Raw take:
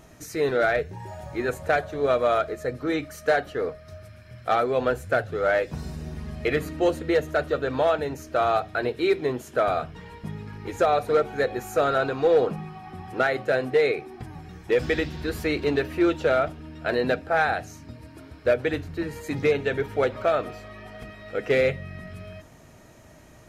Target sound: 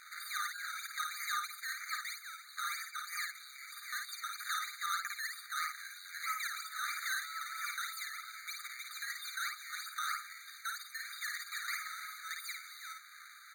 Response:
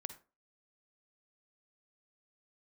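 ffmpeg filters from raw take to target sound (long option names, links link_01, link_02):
-filter_complex "[0:a]lowshelf=frequency=280:gain=10,acompressor=threshold=-26dB:ratio=5,alimiter=level_in=2.5dB:limit=-24dB:level=0:latency=1:release=224,volume=-2.5dB,acompressor=mode=upward:threshold=-43dB:ratio=2.5,acrusher=samples=25:mix=1:aa=0.000001:lfo=1:lforange=15:lforate=1.8,asplit=2[link_01][link_02];[link_02]aecho=0:1:93:0.631[link_03];[link_01][link_03]amix=inputs=2:normalize=0,asetrate=76440,aresample=44100,afftfilt=real='re*eq(mod(floor(b*sr/1024/1200),2),1)':imag='im*eq(mod(floor(b*sr/1024/1200),2),1)':win_size=1024:overlap=0.75,volume=2dB"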